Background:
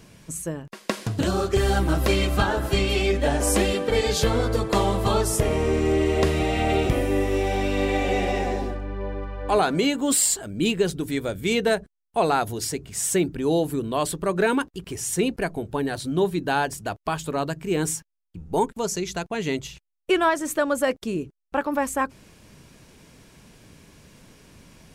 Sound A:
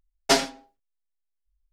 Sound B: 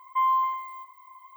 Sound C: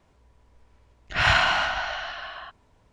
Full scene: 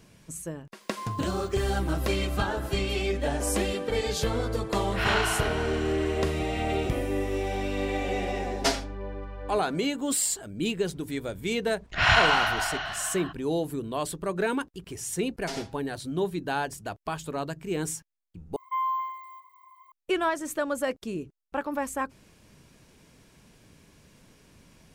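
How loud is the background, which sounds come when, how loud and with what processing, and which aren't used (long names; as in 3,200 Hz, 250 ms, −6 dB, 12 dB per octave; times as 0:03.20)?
background −6 dB
0:00.81: mix in B −15 dB
0:03.81: mix in C −7 dB
0:08.35: mix in A −5.5 dB
0:10.82: mix in C −0.5 dB
0:15.18: mix in A −9 dB + brickwall limiter −15 dBFS
0:18.56: overwrite with B −5 dB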